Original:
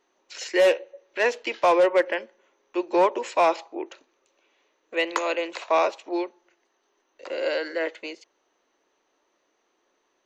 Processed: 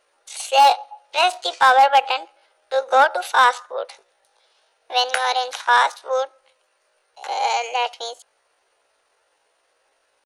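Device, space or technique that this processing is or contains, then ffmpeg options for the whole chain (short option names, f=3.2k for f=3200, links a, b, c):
chipmunk voice: -af "asetrate=66075,aresample=44100,atempo=0.66742,volume=5.5dB"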